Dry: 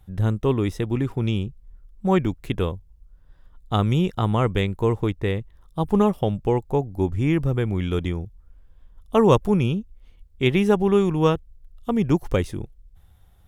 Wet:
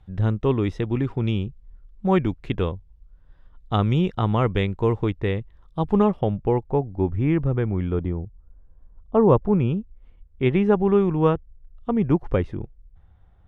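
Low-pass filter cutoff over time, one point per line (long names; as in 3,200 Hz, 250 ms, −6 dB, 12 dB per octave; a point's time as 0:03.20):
0:05.85 3,800 Hz
0:06.33 2,000 Hz
0:07.59 2,000 Hz
0:08.11 1,000 Hz
0:09.21 1,000 Hz
0:09.72 1,900 Hz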